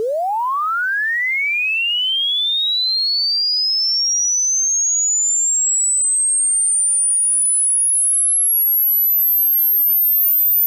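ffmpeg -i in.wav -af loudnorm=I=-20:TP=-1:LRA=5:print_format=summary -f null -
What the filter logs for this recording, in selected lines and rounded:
Input Integrated:    -13.1 LUFS
Input True Peak:     -11.3 dBTP
Input LRA:             3.2 LU
Input Threshold:     -23.1 LUFS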